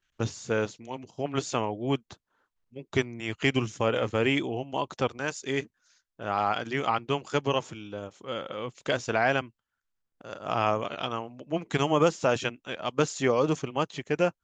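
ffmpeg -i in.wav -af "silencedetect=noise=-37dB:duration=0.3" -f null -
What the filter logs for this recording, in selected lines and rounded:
silence_start: 2.13
silence_end: 2.76 | silence_duration: 0.63
silence_start: 5.63
silence_end: 6.20 | silence_duration: 0.57
silence_start: 9.46
silence_end: 10.21 | silence_duration: 0.76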